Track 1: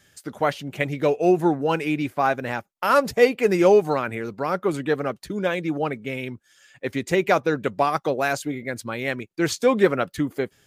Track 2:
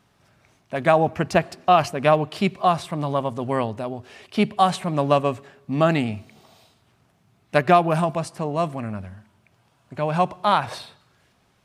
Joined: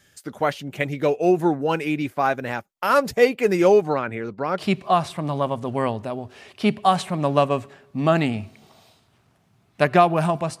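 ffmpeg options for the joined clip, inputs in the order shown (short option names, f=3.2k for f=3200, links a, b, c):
-filter_complex "[0:a]asettb=1/sr,asplit=3[a][b][c];[a]atrim=end=3.814[d];[b]atrim=start=3.81:end=4.63,asetpts=PTS-STARTPTS,afade=t=in:d=0.004:c=qsin,afade=t=out:st=0.816:d=0.004:c=qsin,aemphasis=mode=reproduction:type=50fm[e];[c]atrim=start=4.626[f];[d][e]acrossfade=d=0.004:c1=hsin:c2=qsin[g];[g][f]acrossfade=d=0.004:c1=qsin:c2=hsin,apad=whole_dur=10.6,atrim=end=10.6,atrim=end=4.63,asetpts=PTS-STARTPTS[h];[1:a]atrim=start=2.29:end=8.34,asetpts=PTS-STARTPTS[i];[h][i]acrossfade=d=0.08:c1=tri:c2=tri"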